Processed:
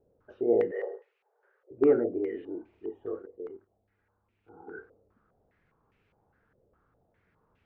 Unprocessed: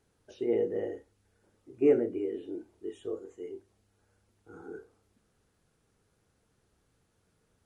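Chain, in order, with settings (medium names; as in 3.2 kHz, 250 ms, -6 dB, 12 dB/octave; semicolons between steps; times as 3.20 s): 0.71–1.71 s: rippled Chebyshev high-pass 380 Hz, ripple 3 dB; 3.22–4.77 s: level held to a coarse grid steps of 11 dB; step-sequenced low-pass 4.9 Hz 550–2500 Hz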